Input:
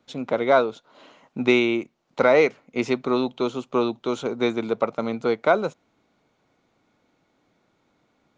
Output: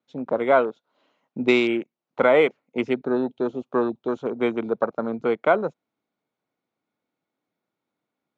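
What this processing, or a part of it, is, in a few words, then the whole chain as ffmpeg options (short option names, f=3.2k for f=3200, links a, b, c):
over-cleaned archive recording: -filter_complex "[0:a]highpass=130,lowpass=6.3k,afwtdn=0.0251,asettb=1/sr,asplit=3[a][b][c];[a]atrim=end=2.874[d];[b]atrim=start=2.87:end=3.46,asetpts=PTS-STARTPTS,afade=t=in:d=0.004:c=qsin,afade=t=out:st=0.586:d=0.004:c=qsin,equalizer=f=1.1k:t=o:w=0.3:g=-14.5[e];[c]atrim=start=3.456[f];[d][e]acrossfade=d=0.004:c1=hsin:c2=qsin[g];[g][f]acrossfade=d=0.004:c1=qsin:c2=hsin"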